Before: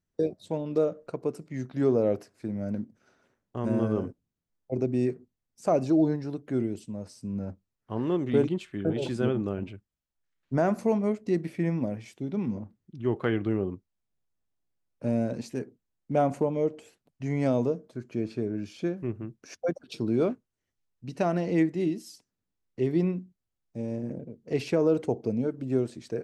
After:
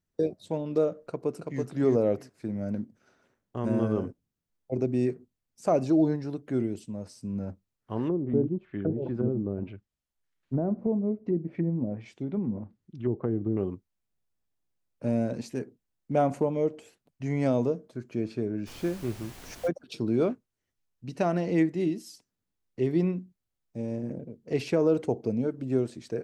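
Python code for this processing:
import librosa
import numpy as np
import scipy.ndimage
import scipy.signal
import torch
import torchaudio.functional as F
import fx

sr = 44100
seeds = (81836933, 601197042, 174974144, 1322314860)

y = fx.echo_throw(x, sr, start_s=0.99, length_s=0.64, ms=330, feedback_pct=15, wet_db=-3.5)
y = fx.env_lowpass_down(y, sr, base_hz=410.0, full_db=-24.0, at=(8.07, 13.57))
y = fx.dmg_noise_colour(y, sr, seeds[0], colour='pink', level_db=-47.0, at=(18.66, 19.67), fade=0.02)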